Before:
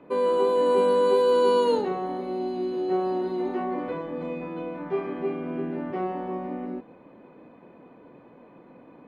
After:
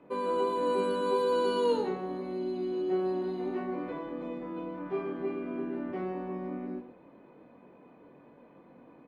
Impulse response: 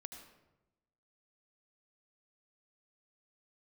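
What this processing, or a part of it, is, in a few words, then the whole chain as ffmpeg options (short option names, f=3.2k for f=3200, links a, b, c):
slapback doubling: -filter_complex "[0:a]asplit=3[a][b][c];[b]adelay=21,volume=-5dB[d];[c]adelay=119,volume=-10.5dB[e];[a][d][e]amix=inputs=3:normalize=0,volume=-6.5dB"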